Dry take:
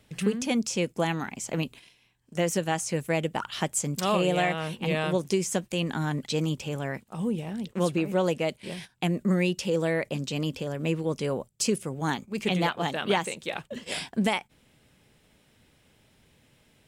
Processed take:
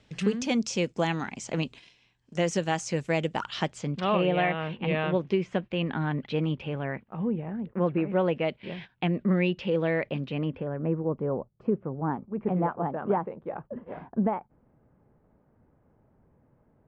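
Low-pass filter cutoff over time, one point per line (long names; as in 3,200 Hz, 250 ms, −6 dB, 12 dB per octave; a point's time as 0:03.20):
low-pass filter 24 dB per octave
0:03.51 6,600 Hz
0:04.09 3,000 Hz
0:06.68 3,000 Hz
0:07.67 1,700 Hz
0:08.47 3,200 Hz
0:10.15 3,200 Hz
0:11.04 1,200 Hz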